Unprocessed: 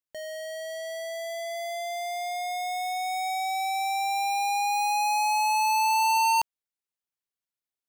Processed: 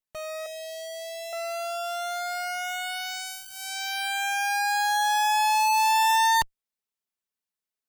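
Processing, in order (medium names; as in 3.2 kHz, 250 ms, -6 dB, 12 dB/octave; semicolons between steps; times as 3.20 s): comb filter that takes the minimum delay 4.6 ms; 0.46–1.33 s: Butterworth band-stop 1.2 kHz, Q 0.69; trim +2 dB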